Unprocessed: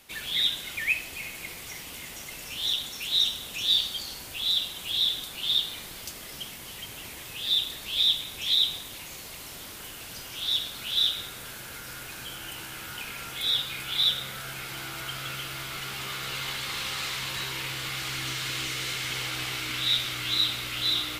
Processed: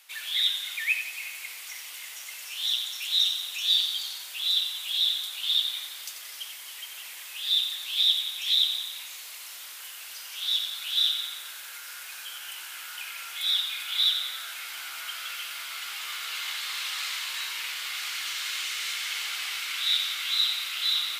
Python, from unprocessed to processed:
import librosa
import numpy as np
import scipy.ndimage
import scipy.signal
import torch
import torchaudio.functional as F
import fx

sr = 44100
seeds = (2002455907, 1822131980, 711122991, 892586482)

y = scipy.signal.sosfilt(scipy.signal.butter(2, 1200.0, 'highpass', fs=sr, output='sos'), x)
y = fx.echo_wet_highpass(y, sr, ms=89, feedback_pct=59, hz=2000.0, wet_db=-8.5)